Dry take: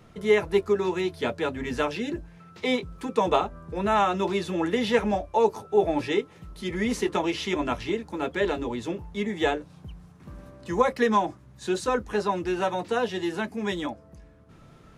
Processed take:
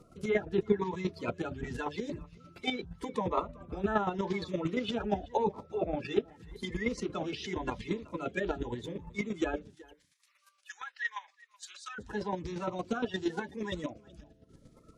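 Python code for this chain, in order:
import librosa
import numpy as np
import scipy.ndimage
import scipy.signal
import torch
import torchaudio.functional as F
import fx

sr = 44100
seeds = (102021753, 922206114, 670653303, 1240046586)

y = fx.spec_quant(x, sr, step_db=30)
y = fx.env_lowpass_down(y, sr, base_hz=2800.0, full_db=-20.0)
y = fx.highpass(y, sr, hz=1400.0, slope=24, at=(9.74, 11.98), fade=0.02)
y = fx.chopper(y, sr, hz=8.6, depth_pct=60, duty_pct=20)
y = y + 10.0 ** (-23.0 / 20.0) * np.pad(y, (int(376 * sr / 1000.0), 0))[:len(y)]
y = fx.notch_cascade(y, sr, direction='rising', hz=0.87)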